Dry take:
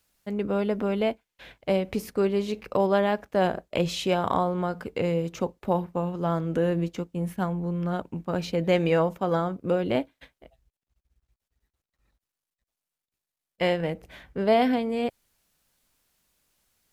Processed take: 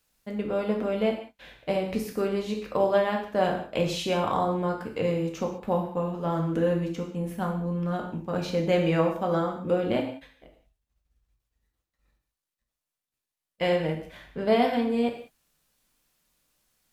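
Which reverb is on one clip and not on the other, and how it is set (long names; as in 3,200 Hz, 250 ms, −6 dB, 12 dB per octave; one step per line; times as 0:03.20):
reverb whose tail is shaped and stops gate 220 ms falling, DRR 1 dB
level −3 dB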